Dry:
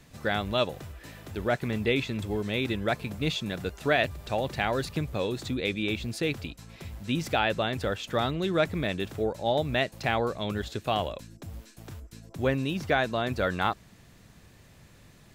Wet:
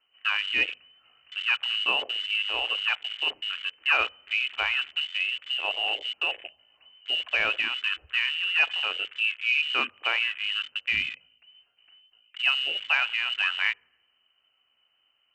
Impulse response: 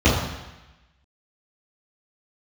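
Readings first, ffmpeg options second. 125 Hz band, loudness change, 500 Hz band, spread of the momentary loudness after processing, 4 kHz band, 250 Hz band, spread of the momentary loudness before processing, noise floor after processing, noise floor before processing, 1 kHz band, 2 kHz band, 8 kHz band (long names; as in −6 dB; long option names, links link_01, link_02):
below −25 dB, +3.5 dB, −14.5 dB, 6 LU, +9.5 dB, −21.5 dB, 16 LU, −71 dBFS, −55 dBFS, −4.5 dB, +7.5 dB, can't be measured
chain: -filter_complex "[0:a]lowpass=frequency=2600:width_type=q:width=0.5098,lowpass=frequency=2600:width_type=q:width=0.6013,lowpass=frequency=2600:width_type=q:width=0.9,lowpass=frequency=2600:width_type=q:width=2.563,afreqshift=-3100,asplit=2[link_01][link_02];[1:a]atrim=start_sample=2205,highshelf=frequency=5000:gain=-10.5[link_03];[link_02][link_03]afir=irnorm=-1:irlink=0,volume=-32.5dB[link_04];[link_01][link_04]amix=inputs=2:normalize=0,afwtdn=0.0178,volume=1dB"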